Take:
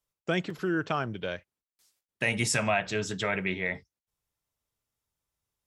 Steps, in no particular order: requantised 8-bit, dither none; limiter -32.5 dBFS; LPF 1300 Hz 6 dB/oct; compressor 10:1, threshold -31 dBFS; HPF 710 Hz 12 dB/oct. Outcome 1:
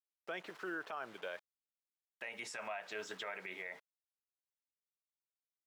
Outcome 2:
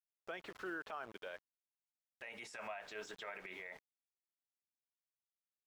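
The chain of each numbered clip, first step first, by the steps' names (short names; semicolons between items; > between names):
requantised > HPF > compressor > LPF > limiter; HPF > requantised > compressor > limiter > LPF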